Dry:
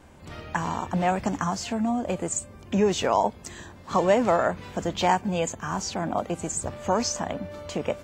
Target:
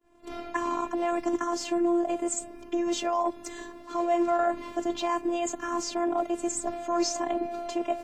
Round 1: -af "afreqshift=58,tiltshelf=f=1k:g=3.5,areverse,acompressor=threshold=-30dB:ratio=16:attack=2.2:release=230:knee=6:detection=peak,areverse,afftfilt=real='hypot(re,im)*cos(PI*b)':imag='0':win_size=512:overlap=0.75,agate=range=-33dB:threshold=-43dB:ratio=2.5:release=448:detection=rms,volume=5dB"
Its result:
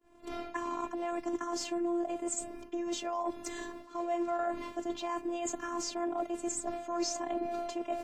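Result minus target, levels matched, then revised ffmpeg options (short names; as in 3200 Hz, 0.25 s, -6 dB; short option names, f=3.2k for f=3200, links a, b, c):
compressor: peak gain reduction +8 dB
-af "afreqshift=58,tiltshelf=f=1k:g=3.5,areverse,acompressor=threshold=-21.5dB:ratio=16:attack=2.2:release=230:knee=6:detection=peak,areverse,afftfilt=real='hypot(re,im)*cos(PI*b)':imag='0':win_size=512:overlap=0.75,agate=range=-33dB:threshold=-43dB:ratio=2.5:release=448:detection=rms,volume=5dB"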